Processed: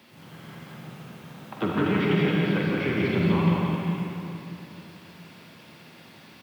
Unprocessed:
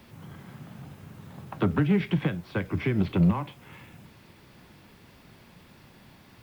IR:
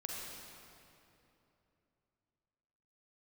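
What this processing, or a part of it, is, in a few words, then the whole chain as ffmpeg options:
stadium PA: -filter_complex "[0:a]highpass=170,equalizer=f=3.2k:t=o:w=1.6:g=4.5,aecho=1:1:172|262.4:0.708|0.316[a];[1:a]atrim=start_sample=2205[b];[a][b]afir=irnorm=-1:irlink=0,volume=2dB"

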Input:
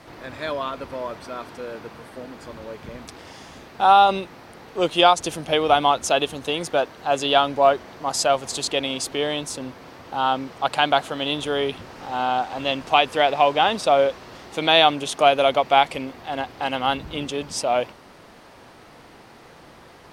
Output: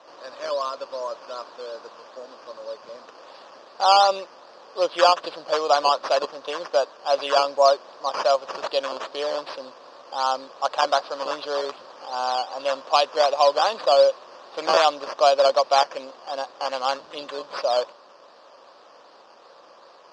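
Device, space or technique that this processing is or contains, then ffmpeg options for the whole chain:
circuit-bent sampling toy: -af "acrusher=samples=9:mix=1:aa=0.000001:lfo=1:lforange=5.4:lforate=2.6,highpass=480,equalizer=f=560:t=q:w=4:g=10,equalizer=f=1.1k:t=q:w=4:g=8,equalizer=f=2.1k:t=q:w=4:g=-9,equalizer=f=4.7k:t=q:w=4:g=9,lowpass=f=5.7k:w=0.5412,lowpass=f=5.7k:w=1.3066,volume=-4.5dB"

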